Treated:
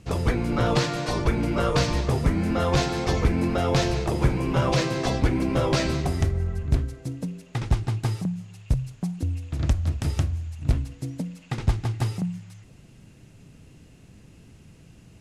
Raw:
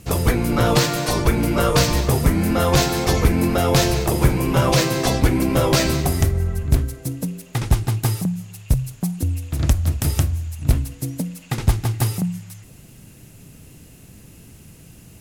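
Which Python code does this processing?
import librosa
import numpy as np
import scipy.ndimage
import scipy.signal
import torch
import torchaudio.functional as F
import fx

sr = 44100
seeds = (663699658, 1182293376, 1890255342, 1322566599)

y = fx.air_absorb(x, sr, metres=78.0)
y = y * 10.0 ** (-5.0 / 20.0)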